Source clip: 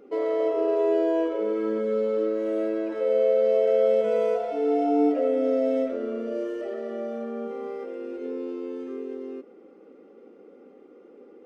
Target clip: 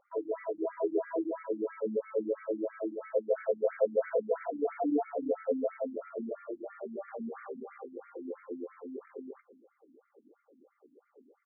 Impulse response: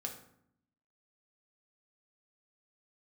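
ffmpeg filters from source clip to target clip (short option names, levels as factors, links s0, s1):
-filter_complex "[0:a]asettb=1/sr,asplit=3[s0][s1][s2];[s0]atrim=end=3.274[s3];[s1]atrim=start=3.27:end=4.86,asetpts=PTS-STARTPTS,afade=t=in:d=0.004:c=qsin,afade=t=out:st=1.586:d=0.004:c=qsin,aeval=exprs='val(0)+0.5*0.0224*sgn(val(0))':c=same[s4];[s2]atrim=start=4.856[s5];[s3][s4]acrossfade=d=0.004:c1=hsin:c2=qsin[s6];[s6][s5]acrossfade=d=0.004:c1=qsin:c2=hsin,highshelf=f=2200:g=7.5,asettb=1/sr,asplit=3[s7][s8][s9];[s7]atrim=end=7.084[s10];[s8]atrim=start=7.08:end=7.63,asetpts=PTS-STARTPTS,afade=t=in:d=0.004:c=qsin,afade=t=out:st=0.546:d=0.004:c=qsin,aeval=exprs='0.0708*(cos(1*acos(clip(val(0)/0.0708,-1,1)))-cos(1*PI/2))+0.0178*(cos(5*acos(clip(val(0)/0.0708,-1,1)))-cos(5*PI/2))+0.00891*(cos(7*acos(clip(val(0)/0.0708,-1,1)))-cos(7*PI/2))+0.00562*(cos(8*acos(clip(val(0)/0.0708,-1,1)))-cos(8*PI/2))':c=same[s11];[s9]atrim=start=7.626[s12];[s10][s11]acrossfade=d=0.004:c1=hsin:c2=qsin[s13];[s13][s12]acrossfade=d=0.004:c1=qsin:c2=hsin,asplit=2[s14][s15];[s15]adelay=190,highpass=300,lowpass=3400,asoftclip=type=hard:threshold=0.0944,volume=0.316[s16];[s14][s16]amix=inputs=2:normalize=0,asplit=2[s17][s18];[s18]aeval=exprs='val(0)*gte(abs(val(0)),0.0188)':c=same,volume=0.531[s19];[s17][s19]amix=inputs=2:normalize=0,afftfilt=real='re*between(b*sr/1024,210*pow(1700/210,0.5+0.5*sin(2*PI*3*pts/sr))/1.41,210*pow(1700/210,0.5+0.5*sin(2*PI*3*pts/sr))*1.41)':imag='im*between(b*sr/1024,210*pow(1700/210,0.5+0.5*sin(2*PI*3*pts/sr))/1.41,210*pow(1700/210,0.5+0.5*sin(2*PI*3*pts/sr))*1.41)':win_size=1024:overlap=0.75,volume=0.447"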